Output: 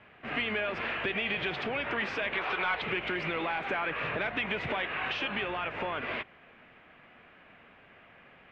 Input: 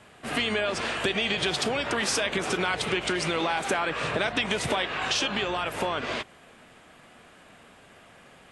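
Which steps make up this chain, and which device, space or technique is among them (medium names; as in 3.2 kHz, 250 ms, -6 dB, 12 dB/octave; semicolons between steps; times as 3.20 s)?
2.34–2.82 s: graphic EQ 125/250/1000/4000/8000 Hz -11/-9/+7/+8/-10 dB; overdriven synthesiser ladder filter (saturation -19 dBFS, distortion -17 dB; four-pole ladder low-pass 2.9 kHz, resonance 40%); trim +3 dB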